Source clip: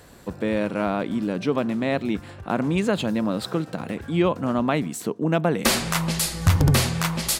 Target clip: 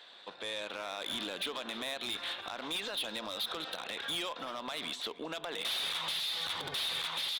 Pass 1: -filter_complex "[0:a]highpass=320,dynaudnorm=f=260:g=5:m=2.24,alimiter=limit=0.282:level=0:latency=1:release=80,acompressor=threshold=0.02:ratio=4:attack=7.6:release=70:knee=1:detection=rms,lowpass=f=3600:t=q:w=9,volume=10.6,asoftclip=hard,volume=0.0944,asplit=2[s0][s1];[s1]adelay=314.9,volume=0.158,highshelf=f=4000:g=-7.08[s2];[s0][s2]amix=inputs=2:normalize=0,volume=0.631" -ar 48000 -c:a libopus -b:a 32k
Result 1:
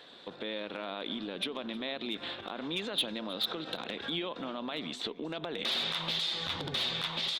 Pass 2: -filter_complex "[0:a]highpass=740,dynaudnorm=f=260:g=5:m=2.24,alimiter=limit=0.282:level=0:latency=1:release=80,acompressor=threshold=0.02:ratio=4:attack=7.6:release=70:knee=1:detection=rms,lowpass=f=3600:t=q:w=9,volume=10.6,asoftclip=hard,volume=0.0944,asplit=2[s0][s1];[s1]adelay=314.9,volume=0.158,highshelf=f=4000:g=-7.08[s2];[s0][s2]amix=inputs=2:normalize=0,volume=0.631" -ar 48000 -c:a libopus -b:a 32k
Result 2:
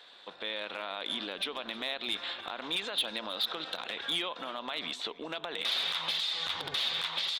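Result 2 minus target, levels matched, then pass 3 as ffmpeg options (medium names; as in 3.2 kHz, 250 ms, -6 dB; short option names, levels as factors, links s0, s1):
overload inside the chain: distortion -8 dB
-filter_complex "[0:a]highpass=740,dynaudnorm=f=260:g=5:m=2.24,alimiter=limit=0.282:level=0:latency=1:release=80,acompressor=threshold=0.02:ratio=4:attack=7.6:release=70:knee=1:detection=rms,lowpass=f=3600:t=q:w=9,volume=25.1,asoftclip=hard,volume=0.0398,asplit=2[s0][s1];[s1]adelay=314.9,volume=0.158,highshelf=f=4000:g=-7.08[s2];[s0][s2]amix=inputs=2:normalize=0,volume=0.631" -ar 48000 -c:a libopus -b:a 32k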